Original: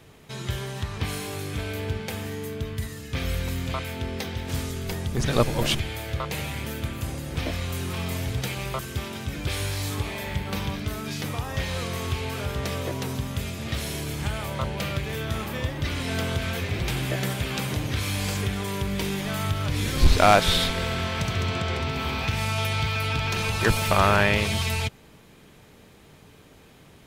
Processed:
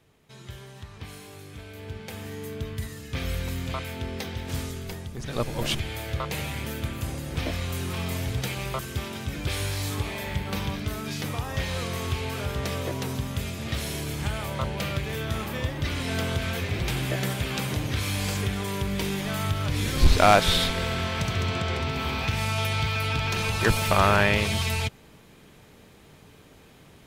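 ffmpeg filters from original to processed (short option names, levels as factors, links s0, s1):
-af "volume=2.66,afade=t=in:st=1.72:d=0.86:silence=0.334965,afade=t=out:st=4.63:d=0.58:silence=0.354813,afade=t=in:st=5.21:d=0.78:silence=0.298538"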